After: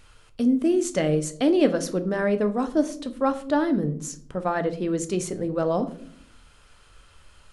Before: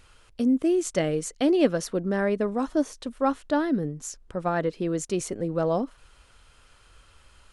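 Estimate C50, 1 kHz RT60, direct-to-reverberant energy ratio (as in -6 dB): 15.5 dB, 0.45 s, 9.0 dB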